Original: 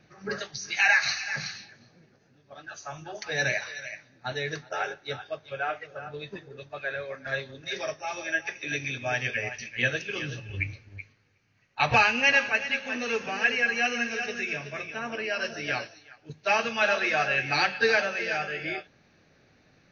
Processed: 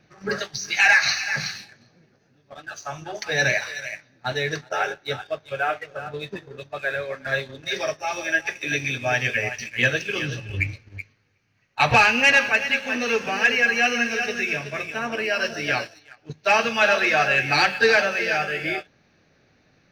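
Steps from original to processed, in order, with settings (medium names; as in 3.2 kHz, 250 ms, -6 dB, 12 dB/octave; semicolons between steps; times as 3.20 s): waveshaping leveller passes 1; trim +2.5 dB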